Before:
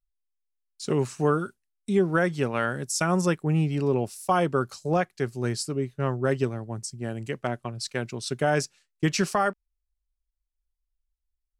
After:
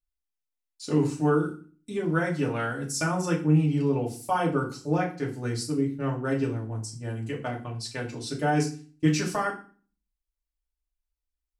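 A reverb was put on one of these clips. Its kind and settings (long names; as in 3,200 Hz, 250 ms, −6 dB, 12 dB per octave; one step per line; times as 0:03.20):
feedback delay network reverb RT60 0.39 s, low-frequency decay 1.5×, high-frequency decay 0.9×, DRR −2.5 dB
level −7 dB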